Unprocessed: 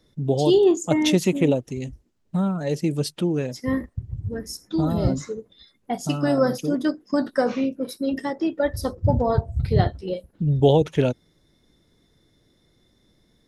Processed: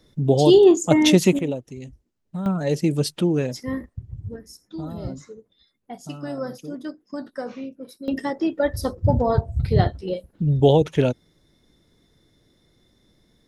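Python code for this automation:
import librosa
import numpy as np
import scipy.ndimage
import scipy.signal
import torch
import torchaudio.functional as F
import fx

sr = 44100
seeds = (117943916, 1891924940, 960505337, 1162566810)

y = fx.gain(x, sr, db=fx.steps((0.0, 4.0), (1.39, -6.5), (2.46, 2.5), (3.63, -4.0), (4.36, -10.0), (8.08, 1.0)))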